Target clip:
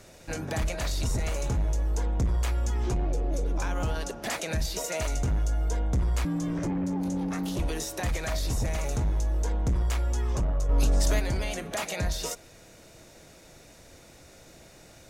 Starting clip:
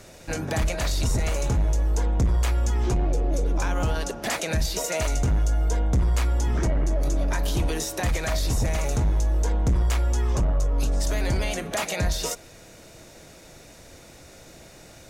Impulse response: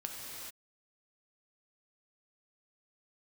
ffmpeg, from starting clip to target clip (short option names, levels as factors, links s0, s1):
-filter_complex "[0:a]asettb=1/sr,asplit=3[s0][s1][s2];[s0]atrim=end=6.254[s3];[s1]atrim=start=6.25:end=7.59,asetpts=PTS-STARTPTS,afade=t=in:d=0.004:c=qsin,afade=t=out:st=1.336:d=0.004:c=qsin,aeval=exprs='val(0)*sin(2*PI*230*n/s)':c=same[s4];[s2]atrim=start=7.586[s5];[s3][s4]acrossfade=d=0.004:c1=hsin:c2=qsin[s6];[s6][s5]acrossfade=d=0.004:c1=qsin:c2=hsin,asettb=1/sr,asplit=3[s7][s8][s9];[s7]atrim=end=10.694[s10];[s8]atrim=start=10.69:end=11.2,asetpts=PTS-STARTPTS,afade=t=in:d=0.004:c=qsin,afade=t=out:st=0.506:d=0.004:c=qsin,acontrast=45[s11];[s9]atrim=start=11.196[s12];[s10][s11]acrossfade=d=0.004:c1=hsin:c2=qsin[s13];[s13][s12]acrossfade=d=0.004:c1=qsin:c2=hsin,volume=0.596"